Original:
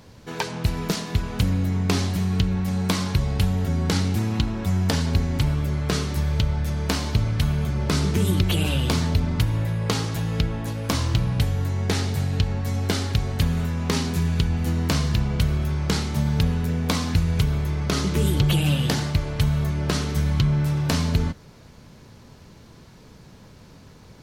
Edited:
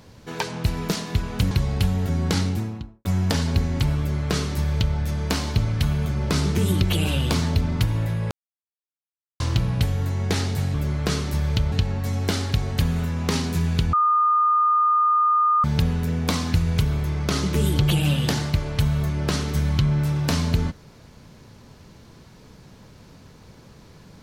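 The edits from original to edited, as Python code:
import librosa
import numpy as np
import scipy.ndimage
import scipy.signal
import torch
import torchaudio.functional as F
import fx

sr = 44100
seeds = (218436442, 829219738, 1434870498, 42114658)

y = fx.studio_fade_out(x, sr, start_s=3.95, length_s=0.69)
y = fx.edit(y, sr, fx.cut(start_s=1.51, length_s=1.59),
    fx.duplicate(start_s=5.57, length_s=0.98, to_s=12.33),
    fx.silence(start_s=9.9, length_s=1.09),
    fx.bleep(start_s=14.54, length_s=1.71, hz=1220.0, db=-15.5), tone=tone)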